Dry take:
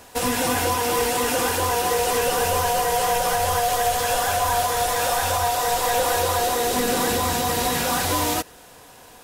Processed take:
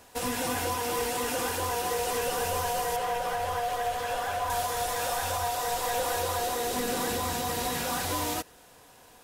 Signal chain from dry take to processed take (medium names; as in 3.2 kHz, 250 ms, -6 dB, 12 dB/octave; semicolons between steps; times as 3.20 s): 2.96–4.50 s: tone controls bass -3 dB, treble -9 dB; trim -8 dB